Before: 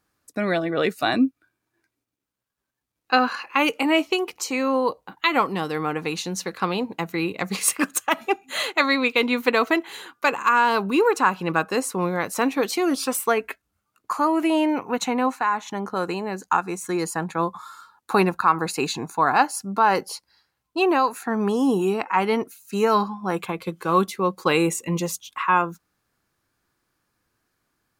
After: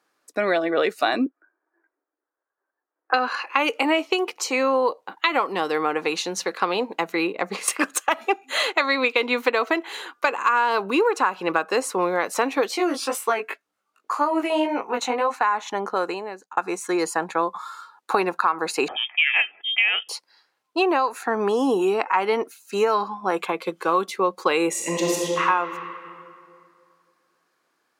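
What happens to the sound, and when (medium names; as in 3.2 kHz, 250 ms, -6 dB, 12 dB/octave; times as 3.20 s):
1.26–3.14 s: elliptic band-pass 310–1700 Hz
7.27–7.68 s: treble shelf 2.2 kHz -10 dB
12.68–15.34 s: chorus 1.9 Hz, delay 17 ms, depth 3.4 ms
15.87–16.57 s: fade out
18.88–20.09 s: frequency inversion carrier 3.4 kHz
24.70–25.42 s: reverb throw, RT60 2.4 s, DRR -3 dB
whole clip: Chebyshev high-pass 430 Hz, order 2; treble shelf 10 kHz -12 dB; compression, threshold -22 dBFS; trim +5.5 dB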